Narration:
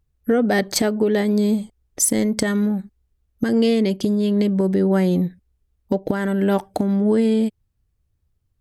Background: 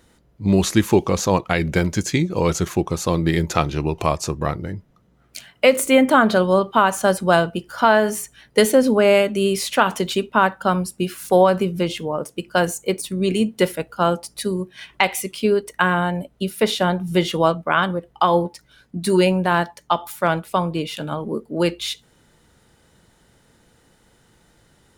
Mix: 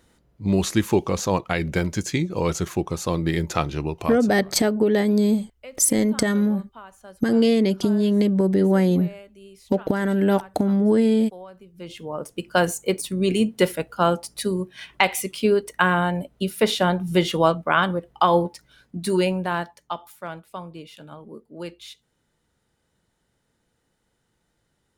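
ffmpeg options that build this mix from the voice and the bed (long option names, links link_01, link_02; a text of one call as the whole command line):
ffmpeg -i stem1.wav -i stem2.wav -filter_complex "[0:a]adelay=3800,volume=-0.5dB[link_01];[1:a]volume=22dB,afade=type=out:start_time=3.82:duration=0.58:silence=0.0707946,afade=type=in:start_time=11.73:duration=0.78:silence=0.0501187,afade=type=out:start_time=18.4:duration=1.83:silence=0.199526[link_02];[link_01][link_02]amix=inputs=2:normalize=0" out.wav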